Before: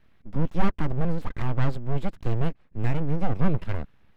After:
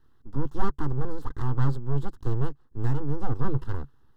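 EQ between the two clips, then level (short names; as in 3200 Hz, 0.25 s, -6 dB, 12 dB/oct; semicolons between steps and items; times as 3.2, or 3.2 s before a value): bell 140 Hz +14.5 dB 0.45 oct; fixed phaser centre 620 Hz, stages 6; 0.0 dB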